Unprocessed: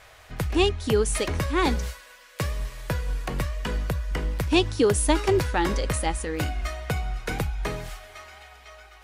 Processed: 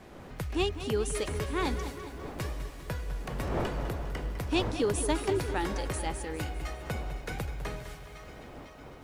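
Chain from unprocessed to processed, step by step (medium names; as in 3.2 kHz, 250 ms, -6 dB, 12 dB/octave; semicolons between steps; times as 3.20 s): wind noise 590 Hz -36 dBFS; filtered feedback delay 209 ms, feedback 77%, low-pass 3.8 kHz, level -14.5 dB; bit-crushed delay 202 ms, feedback 55%, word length 8-bit, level -12.5 dB; trim -8 dB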